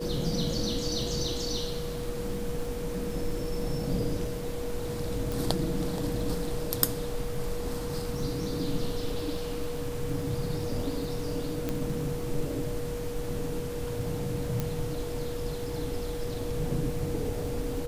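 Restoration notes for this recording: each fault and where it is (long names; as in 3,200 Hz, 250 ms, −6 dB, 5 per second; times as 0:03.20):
surface crackle 14 per second −35 dBFS
whistle 480 Hz −35 dBFS
0:05.32: click
0:11.69: click −16 dBFS
0:14.60: click −15 dBFS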